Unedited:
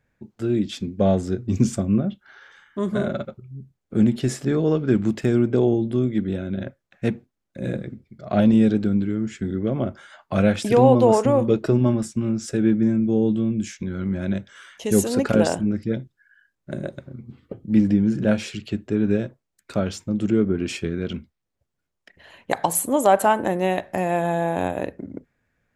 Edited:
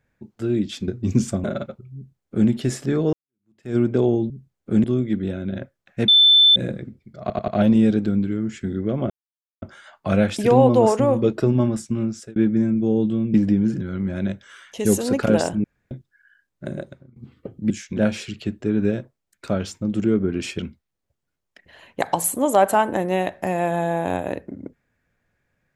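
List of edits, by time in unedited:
0.88–1.33 s: delete
1.89–3.03 s: delete
3.54–4.08 s: copy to 5.89 s
4.72–5.35 s: fade in exponential
7.13–7.61 s: bleep 3.53 kHz -9.5 dBFS
8.26 s: stutter 0.09 s, 4 plays
9.88 s: insert silence 0.52 s
12.30–12.62 s: fade out
13.60–13.87 s: swap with 17.76–18.23 s
15.70–15.97 s: room tone
16.79–17.22 s: fade out, to -21 dB
20.85–21.10 s: delete

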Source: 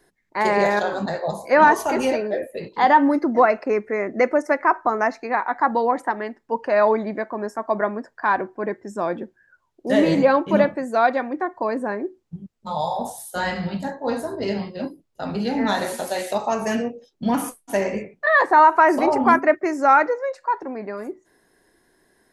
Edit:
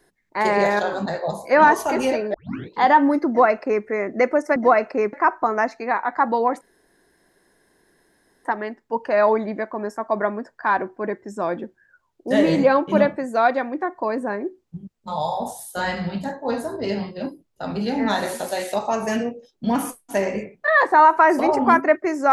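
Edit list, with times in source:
2.34 s: tape start 0.37 s
3.28–3.85 s: copy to 4.56 s
6.04 s: insert room tone 1.84 s

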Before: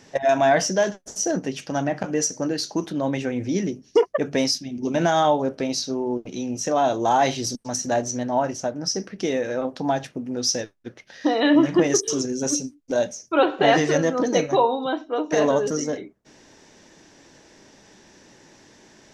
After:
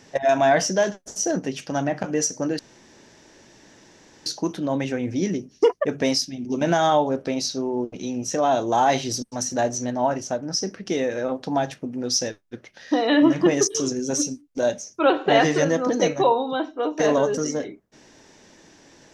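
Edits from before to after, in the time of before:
2.59 s: insert room tone 1.67 s

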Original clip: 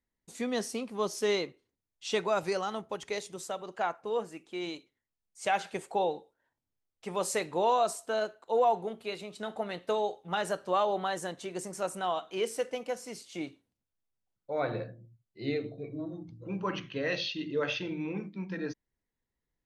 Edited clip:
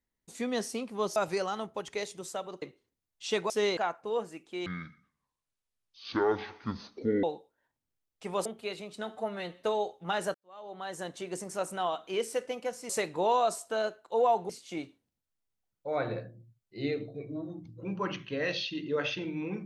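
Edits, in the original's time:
1.16–1.43 s: swap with 2.31–3.77 s
4.66–6.05 s: speed 54%
7.27–8.87 s: move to 13.13 s
9.50–9.86 s: stretch 1.5×
10.58–11.33 s: fade in quadratic

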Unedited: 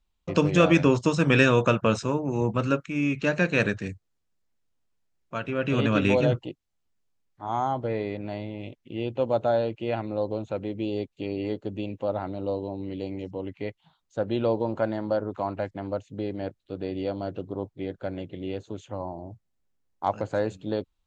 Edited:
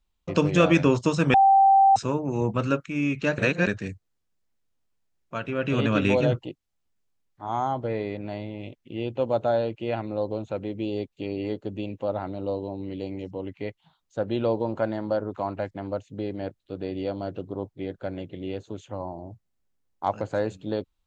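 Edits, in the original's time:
1.34–1.96 s: bleep 781 Hz -13 dBFS
3.38–3.67 s: reverse

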